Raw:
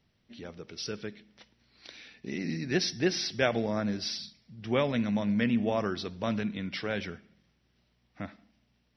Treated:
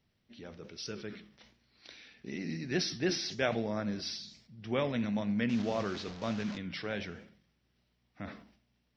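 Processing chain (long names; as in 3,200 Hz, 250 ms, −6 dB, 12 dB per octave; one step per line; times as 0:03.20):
0:05.49–0:06.58: linear delta modulator 32 kbit/s, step −35 dBFS
flanger 1.1 Hz, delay 7.9 ms, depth 9.2 ms, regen −84%
level that may fall only so fast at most 93 dB per second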